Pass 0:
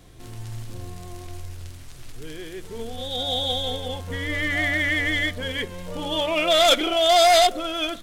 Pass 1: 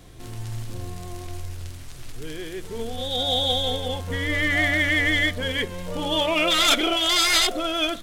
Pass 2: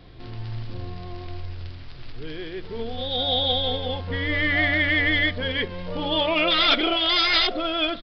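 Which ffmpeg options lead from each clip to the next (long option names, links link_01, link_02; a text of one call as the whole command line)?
ffmpeg -i in.wav -af "afftfilt=real='re*lt(hypot(re,im),0.708)':imag='im*lt(hypot(re,im),0.708)':win_size=1024:overlap=0.75,volume=2.5dB" out.wav
ffmpeg -i in.wav -af "aresample=11025,aresample=44100" out.wav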